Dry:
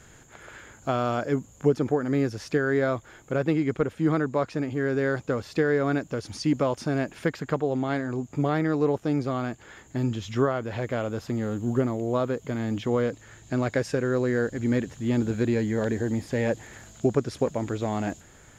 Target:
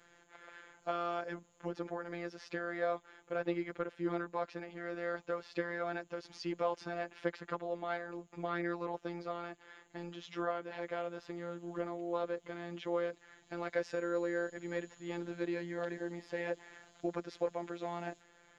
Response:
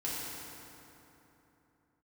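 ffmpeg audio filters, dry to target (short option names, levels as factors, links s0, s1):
-filter_complex "[0:a]asettb=1/sr,asplit=3[s0][s1][s2];[s0]atrim=end=13.914[s3];[s1]atrim=start=13.91:end=15.17,asetpts=PTS-STARTPTS,afade=t=in:d=0.004:c=qsin,afade=t=out:st=1.256:d=0.004:c=qsin,aeval=exprs='val(0)+0.00355*sin(2*PI*6900*n/s)':c=same[s4];[s2]atrim=start=15.166[s5];[s3][s4]acrossfade=d=0.004:c1=hsin:c2=qsin[s6];[s6][s5]acrossfade=d=0.004:c1=qsin:c2=hsin,acrossover=split=330 5400:gain=0.224 1 0.0794[s7][s8][s9];[s7][s8][s9]amix=inputs=3:normalize=0,afftfilt=real='hypot(re,im)*cos(PI*b)':imag='0':win_size=1024:overlap=0.75,volume=0.596"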